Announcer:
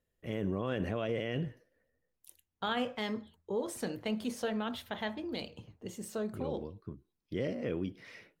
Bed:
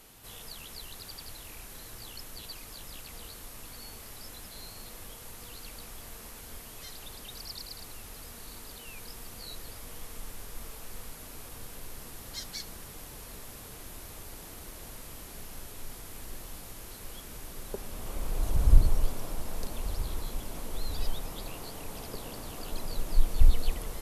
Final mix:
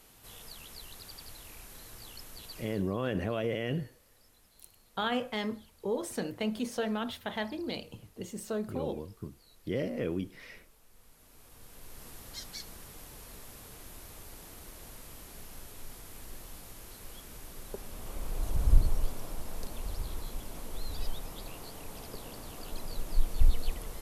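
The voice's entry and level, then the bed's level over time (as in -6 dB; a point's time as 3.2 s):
2.35 s, +2.0 dB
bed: 2.59 s -3.5 dB
2.96 s -18.5 dB
10.91 s -18.5 dB
12.07 s -3.5 dB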